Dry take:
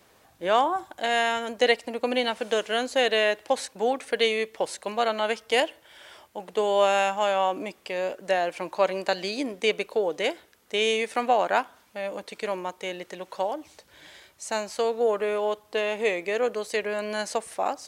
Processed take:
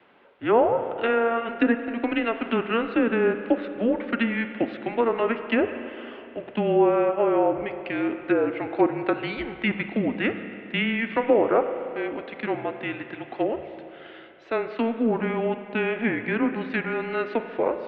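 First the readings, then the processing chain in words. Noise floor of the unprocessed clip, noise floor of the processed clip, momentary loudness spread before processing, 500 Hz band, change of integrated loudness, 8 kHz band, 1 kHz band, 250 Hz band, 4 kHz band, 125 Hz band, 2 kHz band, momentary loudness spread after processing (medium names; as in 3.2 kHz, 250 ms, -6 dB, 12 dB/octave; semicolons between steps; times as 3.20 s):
-60 dBFS, -44 dBFS, 11 LU, +1.0 dB, +1.0 dB, under -40 dB, -2.0 dB, +11.0 dB, -9.0 dB, no reading, 0.0 dB, 11 LU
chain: mistuned SSB -230 Hz 480–3300 Hz; low-pass that closes with the level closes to 1.1 kHz, closed at -20.5 dBFS; spring tank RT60 2.8 s, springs 34/46 ms, chirp 65 ms, DRR 8.5 dB; trim +3.5 dB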